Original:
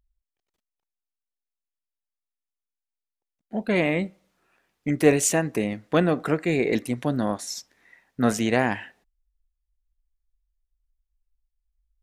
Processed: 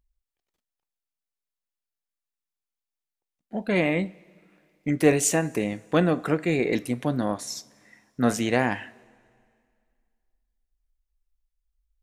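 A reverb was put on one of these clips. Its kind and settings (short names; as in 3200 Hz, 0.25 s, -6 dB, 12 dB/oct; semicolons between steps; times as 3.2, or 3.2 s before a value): two-slope reverb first 0.27 s, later 2.2 s, from -19 dB, DRR 14 dB; gain -1 dB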